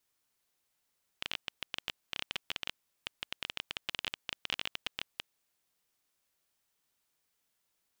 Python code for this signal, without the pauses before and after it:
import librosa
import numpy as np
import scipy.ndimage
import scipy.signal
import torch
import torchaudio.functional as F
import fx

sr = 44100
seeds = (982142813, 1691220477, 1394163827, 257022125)

y = fx.geiger_clicks(sr, seeds[0], length_s=4.2, per_s=14.0, level_db=-16.5)